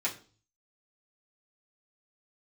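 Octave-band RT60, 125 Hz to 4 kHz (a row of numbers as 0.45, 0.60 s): 0.75, 0.50, 0.45, 0.35, 0.35, 0.40 s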